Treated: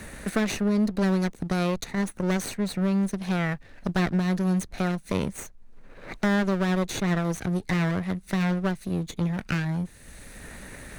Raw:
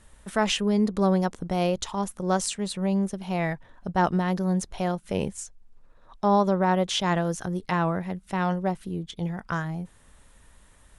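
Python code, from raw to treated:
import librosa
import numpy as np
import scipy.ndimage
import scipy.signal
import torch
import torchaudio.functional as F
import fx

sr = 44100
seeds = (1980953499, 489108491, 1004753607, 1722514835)

y = fx.lower_of_two(x, sr, delay_ms=0.48)
y = fx.band_squash(y, sr, depth_pct=70)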